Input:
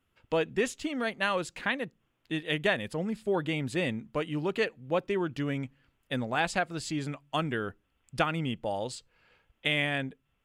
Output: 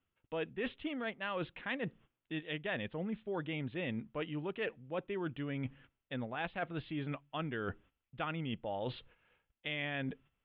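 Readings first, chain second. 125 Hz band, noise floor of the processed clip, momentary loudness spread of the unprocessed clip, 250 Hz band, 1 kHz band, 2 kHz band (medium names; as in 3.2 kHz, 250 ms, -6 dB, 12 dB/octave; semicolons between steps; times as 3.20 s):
-6.5 dB, under -85 dBFS, 8 LU, -7.0 dB, -9.5 dB, -9.0 dB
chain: gate -59 dBFS, range -13 dB; steep low-pass 3.6 kHz 72 dB/octave; reverse; compression 6:1, threshold -42 dBFS, peak gain reduction 19 dB; reverse; trim +5.5 dB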